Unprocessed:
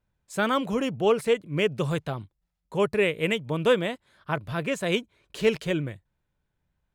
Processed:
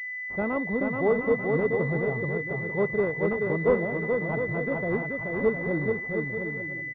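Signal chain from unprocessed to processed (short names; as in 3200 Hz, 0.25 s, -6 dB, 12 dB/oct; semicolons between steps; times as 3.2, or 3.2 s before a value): on a send: bouncing-ball echo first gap 0.43 s, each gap 0.65×, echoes 5; on the sum: pulse-width modulation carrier 2000 Hz; gain -1.5 dB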